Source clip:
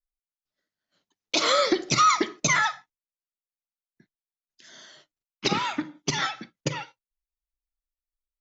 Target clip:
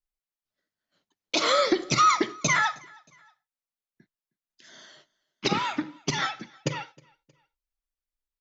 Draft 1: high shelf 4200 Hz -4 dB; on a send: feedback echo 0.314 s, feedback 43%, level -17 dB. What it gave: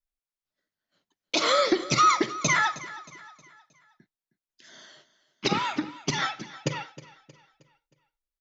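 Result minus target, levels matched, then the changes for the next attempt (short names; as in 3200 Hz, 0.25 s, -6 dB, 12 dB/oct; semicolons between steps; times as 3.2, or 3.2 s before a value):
echo-to-direct +9.5 dB
change: feedback echo 0.314 s, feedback 43%, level -26.5 dB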